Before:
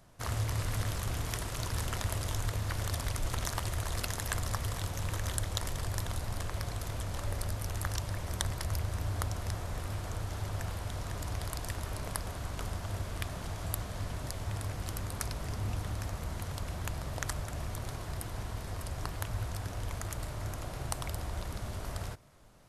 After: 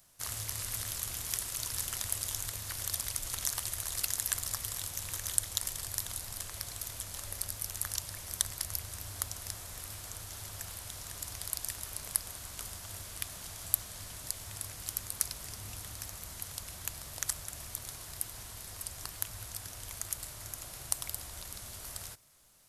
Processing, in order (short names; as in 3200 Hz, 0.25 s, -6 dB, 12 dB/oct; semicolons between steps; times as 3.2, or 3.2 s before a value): pre-emphasis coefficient 0.9; gain +7 dB